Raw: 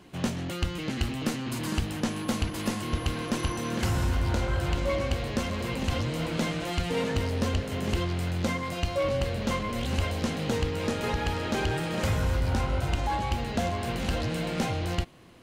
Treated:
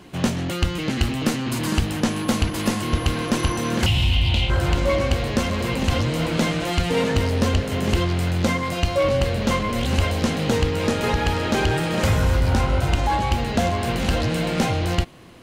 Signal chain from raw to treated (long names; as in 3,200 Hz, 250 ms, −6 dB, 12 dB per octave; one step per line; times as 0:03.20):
0:03.86–0:04.50: drawn EQ curve 120 Hz 0 dB, 470 Hz −12 dB, 770 Hz −5 dB, 1,500 Hz −15 dB, 2,900 Hz +15 dB, 6,000 Hz −7 dB
level +7.5 dB